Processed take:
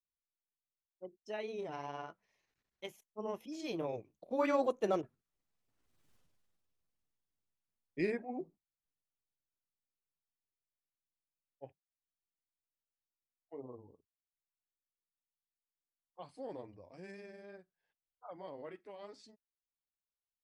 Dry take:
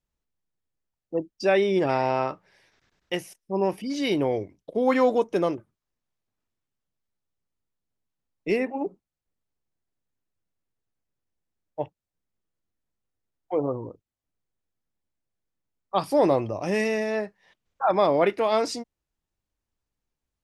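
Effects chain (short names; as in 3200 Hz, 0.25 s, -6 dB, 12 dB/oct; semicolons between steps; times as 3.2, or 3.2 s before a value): Doppler pass-by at 6.12, 33 m/s, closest 3.3 m; grains 0.1 s, spray 17 ms, pitch spread up and down by 0 st; gain +15.5 dB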